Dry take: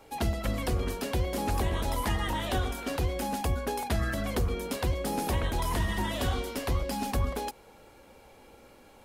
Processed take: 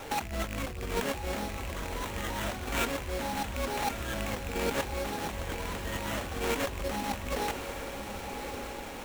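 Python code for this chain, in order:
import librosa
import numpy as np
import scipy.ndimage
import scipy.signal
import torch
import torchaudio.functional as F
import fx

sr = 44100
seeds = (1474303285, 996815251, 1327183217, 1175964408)

y = fx.rattle_buzz(x, sr, strikes_db=-26.0, level_db=-22.0)
y = scipy.signal.sosfilt(scipy.signal.butter(2, 11000.0, 'lowpass', fs=sr, output='sos'), y)
y = fx.high_shelf(y, sr, hz=4400.0, db=11.0)
y = fx.over_compress(y, sr, threshold_db=-38.0, ratio=-1.0)
y = fx.sample_hold(y, sr, seeds[0], rate_hz=4900.0, jitter_pct=20)
y = fx.echo_diffused(y, sr, ms=1129, feedback_pct=42, wet_db=-7.5)
y = y * 10.0 ** (3.0 / 20.0)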